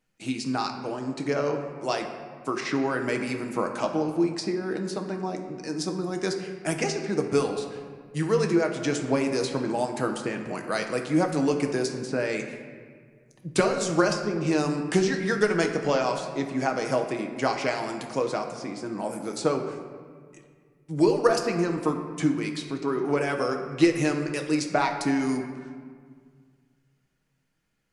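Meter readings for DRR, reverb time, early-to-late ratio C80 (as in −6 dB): 3.5 dB, 1.9 s, 8.0 dB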